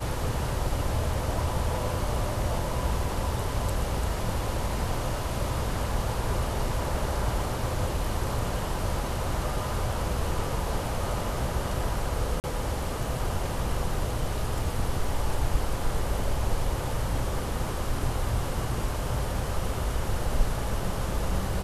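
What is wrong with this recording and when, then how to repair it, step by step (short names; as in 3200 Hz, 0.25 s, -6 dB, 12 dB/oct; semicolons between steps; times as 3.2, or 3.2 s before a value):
12.4–12.44 gap 39 ms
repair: interpolate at 12.4, 39 ms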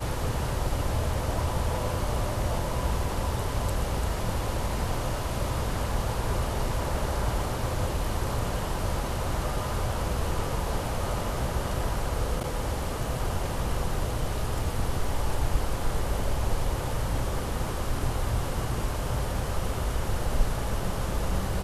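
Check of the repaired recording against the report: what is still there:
none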